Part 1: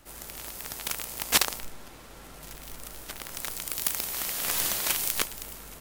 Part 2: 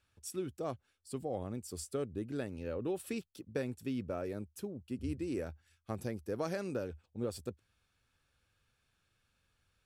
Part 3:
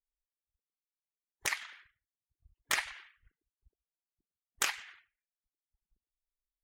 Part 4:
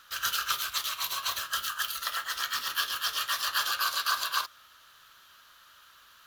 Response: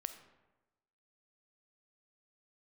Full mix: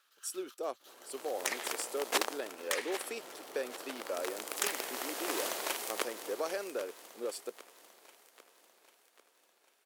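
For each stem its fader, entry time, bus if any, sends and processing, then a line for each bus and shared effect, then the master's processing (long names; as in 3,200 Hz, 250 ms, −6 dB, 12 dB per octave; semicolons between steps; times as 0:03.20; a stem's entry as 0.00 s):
−10.5 dB, 0.80 s, no send, echo send −12.5 dB, spectral tilt −4 dB per octave; automatic gain control gain up to 11.5 dB
+2.0 dB, 0.00 s, no send, no echo send, no processing
+2.0 dB, 0.00 s, no send, no echo send, downward compressor, threshold −34 dBFS, peak gain reduction 9 dB
−18.0 dB, 0.00 s, no send, echo send −3 dB, downward compressor 5 to 1, threshold −39 dBFS, peak gain reduction 14 dB; gate pattern "x.xxxx.x.x" 167 BPM −12 dB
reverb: not used
echo: repeating echo 795 ms, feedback 52%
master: high-pass filter 380 Hz 24 dB per octave; parametric band 9,100 Hz +3.5 dB 1.5 octaves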